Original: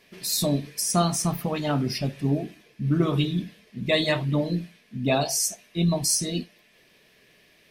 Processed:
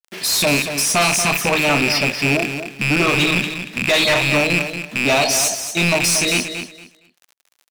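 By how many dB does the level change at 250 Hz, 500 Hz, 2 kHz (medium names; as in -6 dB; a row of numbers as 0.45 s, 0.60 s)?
+3.5 dB, +7.5 dB, +18.5 dB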